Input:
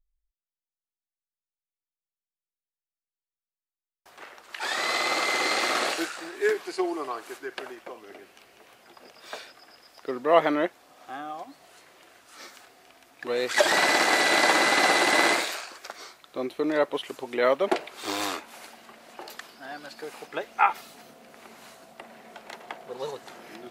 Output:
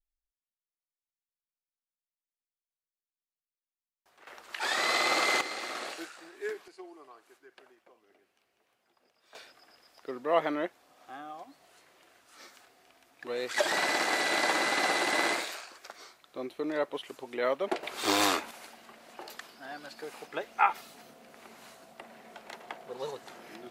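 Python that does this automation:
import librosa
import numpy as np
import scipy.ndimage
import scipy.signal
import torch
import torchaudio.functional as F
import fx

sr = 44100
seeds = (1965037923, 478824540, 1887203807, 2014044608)

y = fx.gain(x, sr, db=fx.steps((0.0, -13.0), (4.27, -1.0), (5.41, -12.0), (6.68, -20.0), (9.35, -7.0), (17.83, 4.0), (18.51, -3.5)))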